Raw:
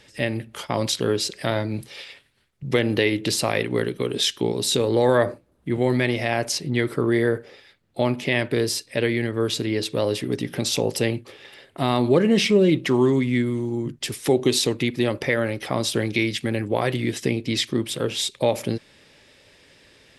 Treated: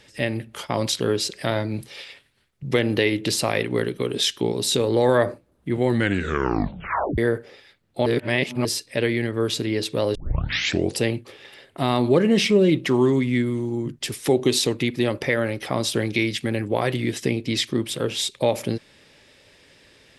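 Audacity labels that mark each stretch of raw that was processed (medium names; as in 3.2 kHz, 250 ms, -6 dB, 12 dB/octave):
5.870000	5.870000	tape stop 1.31 s
8.060000	8.650000	reverse
10.150000	10.150000	tape start 0.85 s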